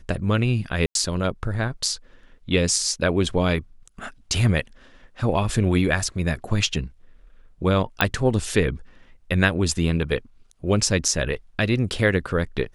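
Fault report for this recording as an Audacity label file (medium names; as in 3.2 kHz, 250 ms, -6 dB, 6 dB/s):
0.860000	0.950000	dropout 92 ms
8.010000	8.010000	pop -4 dBFS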